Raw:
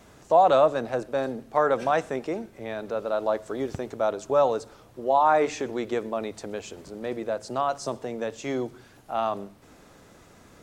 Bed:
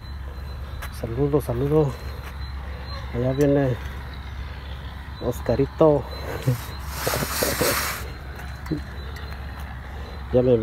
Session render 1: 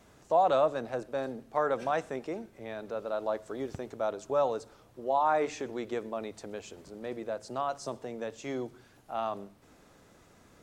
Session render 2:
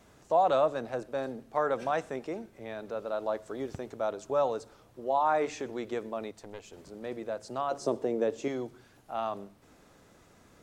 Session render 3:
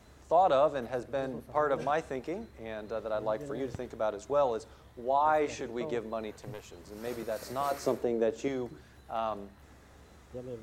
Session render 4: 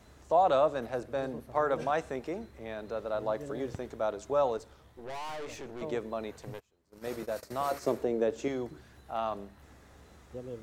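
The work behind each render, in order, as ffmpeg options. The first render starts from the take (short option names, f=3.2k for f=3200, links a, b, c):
-af "volume=-6.5dB"
-filter_complex "[0:a]asettb=1/sr,asplit=3[a][b][c];[a]atrim=end=6.314[d];[b]atrim=start=6.31:end=6.73,asetpts=PTS-STARTPTS,afade=t=in:d=0.004:c=qsin,afade=t=out:st=0.416:d=0.004:c=qsin,aeval=exprs='(tanh(35.5*val(0)+0.75)-tanh(0.75))/35.5':c=same[e];[c]atrim=start=6.726[f];[d][e]acrossfade=d=0.004:c1=hsin:c2=qsin[g];[g][f]acrossfade=d=0.004:c1=qsin:c2=hsin,asettb=1/sr,asplit=3[h][i][j];[h]atrim=end=7.714[k];[i]atrim=start=7.71:end=8.48,asetpts=PTS-STARTPTS,afade=t=in:d=0.004:c=qsin,afade=t=out:st=0.766:d=0.004:c=qsin,equalizer=f=370:t=o:w=1.6:g=12[l];[j]atrim=start=8.476[m];[k][l]acrossfade=d=0.004:c1=hsin:c2=qsin[n];[n][m]acrossfade=d=0.004:c1=qsin:c2=hsin"
-filter_complex "[1:a]volume=-24dB[a];[0:a][a]amix=inputs=2:normalize=0"
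-filter_complex "[0:a]asettb=1/sr,asplit=3[a][b][c];[a]atrim=end=4.574[d];[b]atrim=start=4.57:end=5.82,asetpts=PTS-STARTPTS,afade=t=in:d=0.004:c=qsin,afade=t=out:st=1.246:d=0.004:c=qsin,aeval=exprs='(tanh(79.4*val(0)+0.55)-tanh(0.55))/79.4':c=same[e];[c]atrim=start=5.816[f];[d][e]acrossfade=d=0.004:c1=hsin:c2=qsin[g];[g][f]acrossfade=d=0.004:c1=qsin:c2=hsin,asplit=3[h][i][j];[h]afade=t=out:st=6.58:d=0.02[k];[i]agate=range=-24dB:threshold=-43dB:ratio=16:release=100:detection=peak,afade=t=in:st=6.58:d=0.02,afade=t=out:st=7.93:d=0.02[l];[j]afade=t=in:st=7.93:d=0.02[m];[k][l][m]amix=inputs=3:normalize=0"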